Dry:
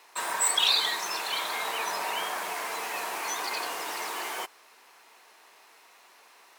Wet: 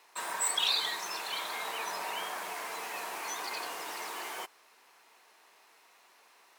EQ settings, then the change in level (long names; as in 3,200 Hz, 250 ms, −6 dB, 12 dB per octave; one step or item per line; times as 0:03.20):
parametric band 81 Hz +6 dB 1.4 octaves
−5.5 dB